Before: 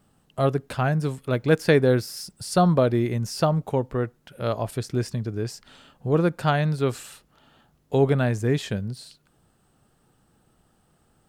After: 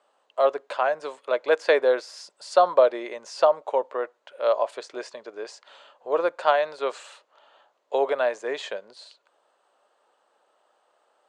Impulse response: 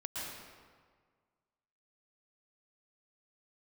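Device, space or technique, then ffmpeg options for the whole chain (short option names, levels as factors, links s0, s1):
phone speaker on a table: -af "highpass=f=470:w=0.5412,highpass=f=470:w=1.3066,equalizer=f=580:t=q:w=4:g=8,equalizer=f=1000:t=q:w=4:g=7,equalizer=f=5400:t=q:w=4:g=-7,lowpass=f=6700:w=0.5412,lowpass=f=6700:w=1.3066"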